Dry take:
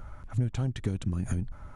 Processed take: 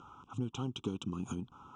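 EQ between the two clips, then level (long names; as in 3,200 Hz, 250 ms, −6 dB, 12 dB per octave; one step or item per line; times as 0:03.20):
band-pass filter 340–4,200 Hz
Butterworth band-reject 1,800 Hz, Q 1.2
phaser with its sweep stopped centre 3,000 Hz, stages 8
+6.5 dB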